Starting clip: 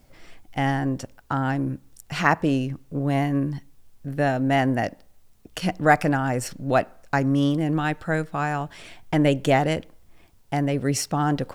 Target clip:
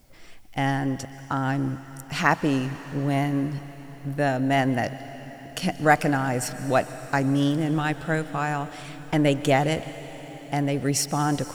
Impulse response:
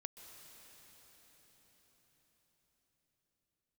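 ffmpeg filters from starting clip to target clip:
-filter_complex "[0:a]asplit=2[s0][s1];[1:a]atrim=start_sample=2205,highshelf=f=2800:g=10.5[s2];[s1][s2]afir=irnorm=-1:irlink=0,volume=0.841[s3];[s0][s3]amix=inputs=2:normalize=0,volume=0.596"

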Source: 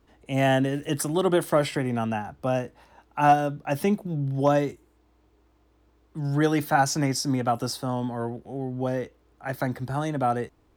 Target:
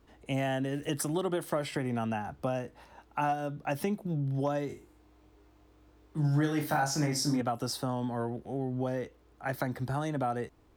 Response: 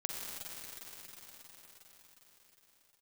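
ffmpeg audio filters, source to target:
-filter_complex "[0:a]acompressor=threshold=0.0355:ratio=4,asettb=1/sr,asplit=3[s0][s1][s2];[s0]atrim=end=4.684[s3];[s1]atrim=start=4.68:end=7.41,asetpts=PTS-STARTPTS,afade=t=in:d=0.004:c=qsin,afade=t=out:st=2.726:d=0.004:c=qsin,aecho=1:1:20|42|66.2|92.82|122.1:0.631|0.398|0.251|0.158|0.1,atrim=end_sample=120393[s4];[s2]atrim=start=7.406[s5];[s3][s4]acrossfade=d=0.004:c1=hsin:c2=qsin[s6];[s6][s5]acrossfade=d=0.004:c1=qsin:c2=hsin"

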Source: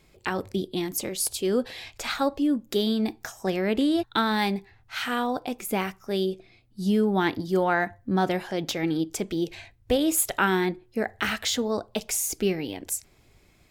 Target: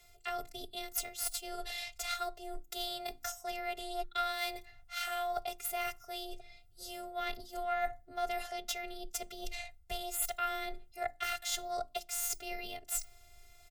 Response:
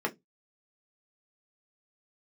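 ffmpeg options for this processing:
-filter_complex "[0:a]acrossover=split=6000[s0][s1];[s1]acontrast=53[s2];[s0][s2]amix=inputs=2:normalize=0,afftfilt=real='hypot(re,im)*cos(PI*b)':imag='0':win_size=512:overlap=0.75,aeval=exprs='0.794*(cos(1*acos(clip(val(0)/0.794,-1,1)))-cos(1*PI/2))+0.0708*(cos(6*acos(clip(val(0)/0.794,-1,1)))-cos(6*PI/2))':c=same,afreqshift=14,areverse,acompressor=threshold=0.0158:ratio=4,areverse,bandreject=f=50:t=h:w=6,bandreject=f=100:t=h:w=6,bandreject=f=150:t=h:w=6,bandreject=f=200:t=h:w=6,bandreject=f=250:t=h:w=6,bandreject=f=300:t=h:w=6,bandreject=f=350:t=h:w=6,aecho=1:1:1.5:0.92"

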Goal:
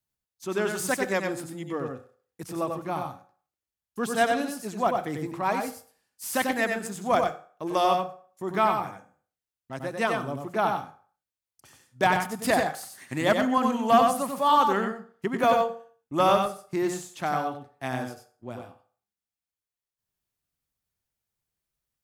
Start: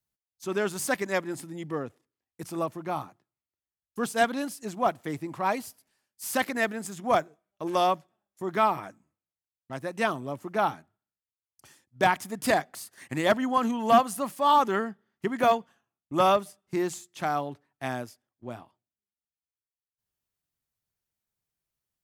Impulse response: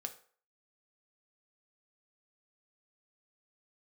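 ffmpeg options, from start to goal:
-filter_complex "[0:a]asplit=2[s0][s1];[1:a]atrim=start_sample=2205,lowshelf=f=77:g=10.5,adelay=93[s2];[s1][s2]afir=irnorm=-1:irlink=0,volume=0.794[s3];[s0][s3]amix=inputs=2:normalize=0"

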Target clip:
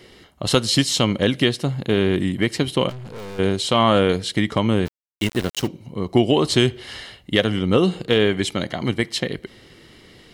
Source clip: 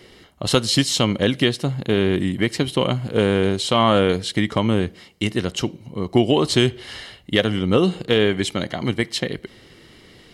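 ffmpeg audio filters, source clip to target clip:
-filter_complex "[0:a]asplit=3[s0][s1][s2];[s0]afade=t=out:st=2.88:d=0.02[s3];[s1]aeval=exprs='(tanh(44.7*val(0)+0.35)-tanh(0.35))/44.7':c=same,afade=t=in:st=2.88:d=0.02,afade=t=out:st=3.38:d=0.02[s4];[s2]afade=t=in:st=3.38:d=0.02[s5];[s3][s4][s5]amix=inputs=3:normalize=0,asplit=3[s6][s7][s8];[s6]afade=t=out:st=4.85:d=0.02[s9];[s7]aeval=exprs='val(0)*gte(abs(val(0)),0.0422)':c=same,afade=t=in:st=4.85:d=0.02,afade=t=out:st=5.66:d=0.02[s10];[s8]afade=t=in:st=5.66:d=0.02[s11];[s9][s10][s11]amix=inputs=3:normalize=0"

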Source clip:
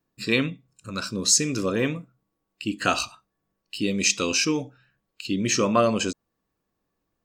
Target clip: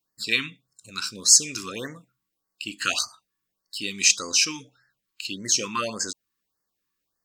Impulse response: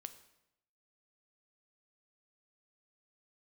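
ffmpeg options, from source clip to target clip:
-af "tiltshelf=f=1100:g=-9,afftfilt=real='re*(1-between(b*sr/1024,560*pow(3100/560,0.5+0.5*sin(2*PI*1.7*pts/sr))/1.41,560*pow(3100/560,0.5+0.5*sin(2*PI*1.7*pts/sr))*1.41))':imag='im*(1-between(b*sr/1024,560*pow(3100/560,0.5+0.5*sin(2*PI*1.7*pts/sr))/1.41,560*pow(3100/560,0.5+0.5*sin(2*PI*1.7*pts/sr))*1.41))':win_size=1024:overlap=0.75,volume=0.631"

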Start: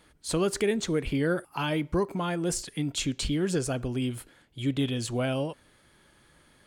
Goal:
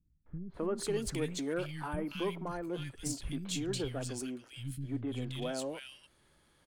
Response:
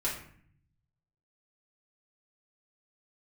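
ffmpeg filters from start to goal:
-filter_complex "[0:a]aeval=exprs='if(lt(val(0),0),0.708*val(0),val(0))':c=same,acrossover=split=200|1800[s0][s1][s2];[s1]adelay=260[s3];[s2]adelay=540[s4];[s0][s3][s4]amix=inputs=3:normalize=0,volume=0.531"

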